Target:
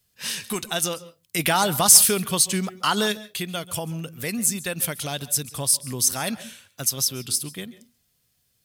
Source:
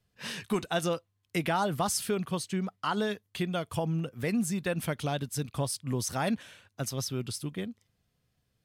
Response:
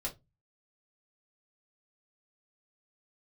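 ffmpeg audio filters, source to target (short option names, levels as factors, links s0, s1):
-filter_complex "[0:a]crystalizer=i=5.5:c=0,asplit=3[s0][s1][s2];[s0]afade=t=out:st=1.38:d=0.02[s3];[s1]acontrast=53,afade=t=in:st=1.38:d=0.02,afade=t=out:st=3.11:d=0.02[s4];[s2]afade=t=in:st=3.11:d=0.02[s5];[s3][s4][s5]amix=inputs=3:normalize=0,asplit=2[s6][s7];[1:a]atrim=start_sample=2205,adelay=133[s8];[s7][s8]afir=irnorm=-1:irlink=0,volume=0.119[s9];[s6][s9]amix=inputs=2:normalize=0,volume=0.891"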